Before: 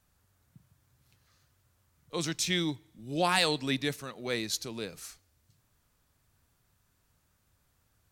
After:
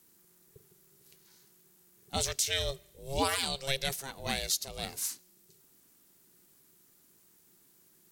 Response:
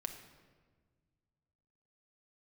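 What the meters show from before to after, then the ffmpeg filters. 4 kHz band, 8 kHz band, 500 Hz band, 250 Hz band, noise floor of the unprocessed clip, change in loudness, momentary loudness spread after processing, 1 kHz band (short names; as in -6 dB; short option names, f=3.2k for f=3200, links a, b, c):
-0.5 dB, +4.0 dB, -2.5 dB, -9.0 dB, -73 dBFS, -1.5 dB, 8 LU, -2.5 dB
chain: -af "aeval=exprs='val(0)*sin(2*PI*270*n/s)':c=same,crystalizer=i=3:c=0,alimiter=limit=-18.5dB:level=0:latency=1:release=407,volume=2.5dB"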